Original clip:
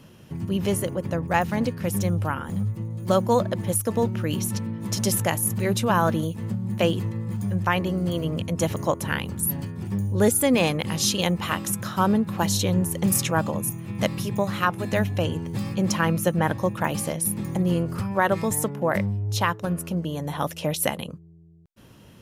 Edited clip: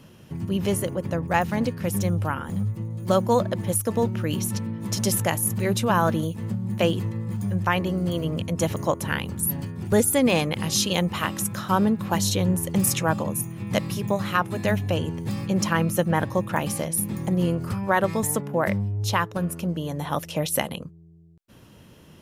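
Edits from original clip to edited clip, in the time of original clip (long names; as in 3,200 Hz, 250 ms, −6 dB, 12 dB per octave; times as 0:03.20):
0:09.92–0:10.20: remove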